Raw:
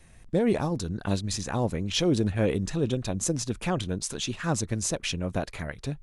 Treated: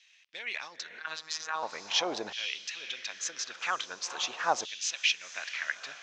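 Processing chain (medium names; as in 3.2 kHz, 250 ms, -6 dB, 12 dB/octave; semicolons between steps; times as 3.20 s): steep low-pass 6.5 kHz 48 dB/octave; echo that smears into a reverb 477 ms, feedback 52%, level -13 dB; LFO high-pass saw down 0.43 Hz 720–3100 Hz; 1.00–1.63 s: robot voice 158 Hz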